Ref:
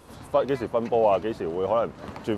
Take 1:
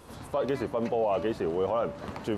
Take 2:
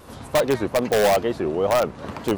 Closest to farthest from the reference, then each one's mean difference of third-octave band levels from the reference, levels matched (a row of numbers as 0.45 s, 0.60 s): 1, 2; 3.0 dB, 4.5 dB